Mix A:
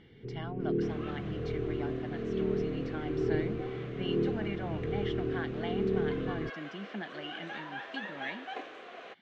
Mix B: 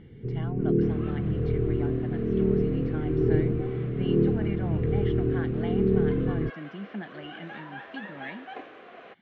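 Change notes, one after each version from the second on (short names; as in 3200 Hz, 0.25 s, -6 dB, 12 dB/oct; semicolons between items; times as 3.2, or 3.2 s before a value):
first sound +4.5 dB; master: add tone controls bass +7 dB, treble -14 dB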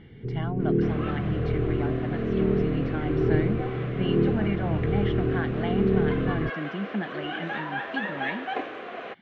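speech +6.5 dB; second sound +10.0 dB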